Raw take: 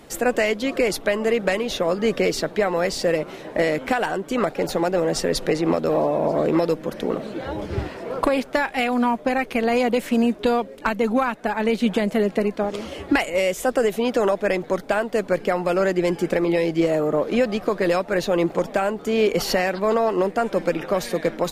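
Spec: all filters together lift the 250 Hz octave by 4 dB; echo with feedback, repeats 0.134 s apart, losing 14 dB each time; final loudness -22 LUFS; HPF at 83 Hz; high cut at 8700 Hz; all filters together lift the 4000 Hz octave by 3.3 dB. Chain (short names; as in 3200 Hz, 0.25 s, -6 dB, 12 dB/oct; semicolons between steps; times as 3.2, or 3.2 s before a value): HPF 83 Hz; LPF 8700 Hz; bell 250 Hz +5 dB; bell 4000 Hz +4.5 dB; feedback echo 0.134 s, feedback 20%, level -14 dB; gain -2 dB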